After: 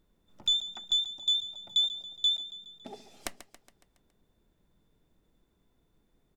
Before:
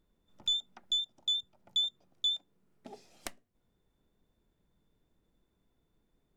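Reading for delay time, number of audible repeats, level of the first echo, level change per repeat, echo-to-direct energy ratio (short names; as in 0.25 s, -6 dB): 0.139 s, 5, -14.0 dB, -5.0 dB, -12.5 dB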